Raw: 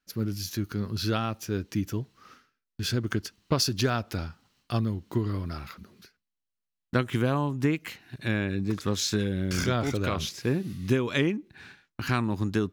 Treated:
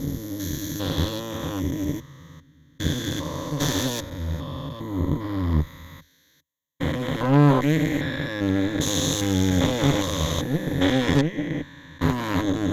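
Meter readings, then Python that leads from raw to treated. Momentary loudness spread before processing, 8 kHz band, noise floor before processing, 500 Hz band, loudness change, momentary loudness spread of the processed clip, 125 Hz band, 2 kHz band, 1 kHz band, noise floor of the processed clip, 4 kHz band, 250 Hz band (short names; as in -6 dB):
10 LU, +5.5 dB, -85 dBFS, +4.0 dB, +4.5 dB, 10 LU, +4.5 dB, +3.0 dB, +4.5 dB, -61 dBFS, +4.0 dB, +6.0 dB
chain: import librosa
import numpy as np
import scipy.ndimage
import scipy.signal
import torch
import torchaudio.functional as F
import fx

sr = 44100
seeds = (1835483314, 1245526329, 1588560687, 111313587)

y = fx.spec_steps(x, sr, hold_ms=400)
y = fx.ripple_eq(y, sr, per_octave=1.1, db=18)
y = fx.cheby_harmonics(y, sr, harmonics=(4,), levels_db=(-11,), full_scale_db=-12.5)
y = y * librosa.db_to_amplitude(5.0)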